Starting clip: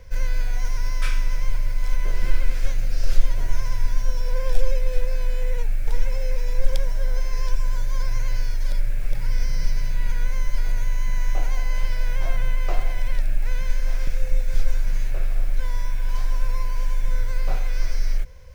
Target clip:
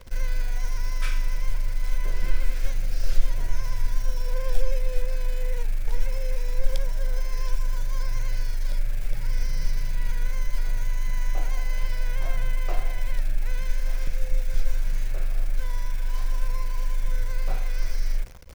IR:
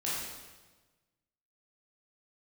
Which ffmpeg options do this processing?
-af "bandreject=f=112.4:t=h:w=4,bandreject=f=224.8:t=h:w=4,bandreject=f=337.2:t=h:w=4,bandreject=f=449.6:t=h:w=4,bandreject=f=562:t=h:w=4,bandreject=f=674.4:t=h:w=4,bandreject=f=786.8:t=h:w=4,bandreject=f=899.2:t=h:w=4,bandreject=f=1011.6:t=h:w=4,bandreject=f=1124:t=h:w=4,bandreject=f=1236.4:t=h:w=4,bandreject=f=1348.8:t=h:w=4,bandreject=f=1461.2:t=h:w=4,acrusher=bits=8:dc=4:mix=0:aa=0.000001,volume=0.708"

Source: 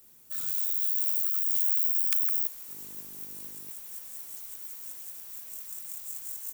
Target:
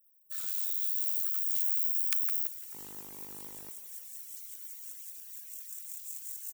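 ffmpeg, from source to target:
-filter_complex "[0:a]highshelf=f=8400:g=-4,acrossover=split=1100[s0][s1];[s0]acrusher=bits=7:mix=0:aa=0.000001[s2];[s2][s1]amix=inputs=2:normalize=0,afftfilt=real='re*gte(hypot(re,im),0.00141)':imag='im*gte(hypot(re,im),0.00141)':win_size=1024:overlap=0.75,asplit=5[s3][s4][s5][s6][s7];[s4]adelay=170,afreqshift=140,volume=0.158[s8];[s5]adelay=340,afreqshift=280,volume=0.0733[s9];[s6]adelay=510,afreqshift=420,volume=0.0335[s10];[s7]adelay=680,afreqshift=560,volume=0.0155[s11];[s3][s8][s9][s10][s11]amix=inputs=5:normalize=0"

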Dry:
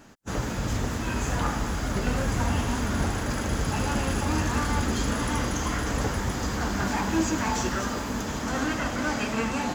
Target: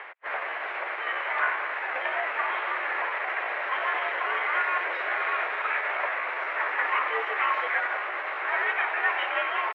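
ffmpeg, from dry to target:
-af "crystalizer=i=9:c=0,asetrate=50951,aresample=44100,atempo=0.865537,acompressor=mode=upward:threshold=0.0631:ratio=2.5,highpass=f=500:t=q:w=0.5412,highpass=f=500:t=q:w=1.307,lowpass=f=2300:t=q:w=0.5176,lowpass=f=2300:t=q:w=0.7071,lowpass=f=2300:t=q:w=1.932,afreqshift=74"

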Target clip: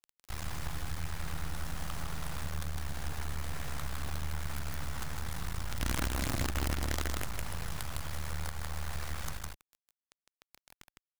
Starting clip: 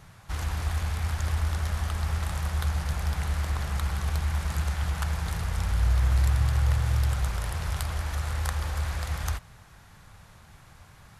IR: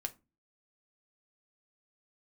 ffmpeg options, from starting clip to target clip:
-af "acrusher=bits=4:dc=4:mix=0:aa=0.000001,equalizer=f=110:w=0.4:g=-3.5,aecho=1:1:157:0.631,alimiter=limit=0.2:level=0:latency=1:release=444,acompressor=threshold=0.0282:ratio=2,volume=0.841"

